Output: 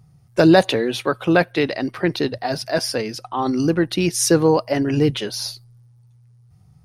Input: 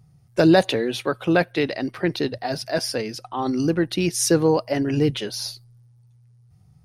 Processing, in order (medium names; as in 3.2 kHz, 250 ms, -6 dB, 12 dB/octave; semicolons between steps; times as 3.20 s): peaking EQ 1.1 kHz +2.5 dB; trim +2.5 dB